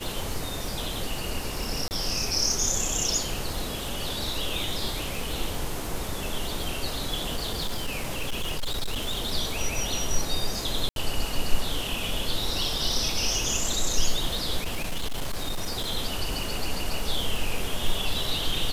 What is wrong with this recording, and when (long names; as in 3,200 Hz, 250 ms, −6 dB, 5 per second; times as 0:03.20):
surface crackle 56 per second −30 dBFS
0:01.88–0:01.91: drop-out 29 ms
0:07.35–0:09.33: clipping −24 dBFS
0:10.89–0:10.96: drop-out 72 ms
0:14.64–0:15.92: clipping −24 dBFS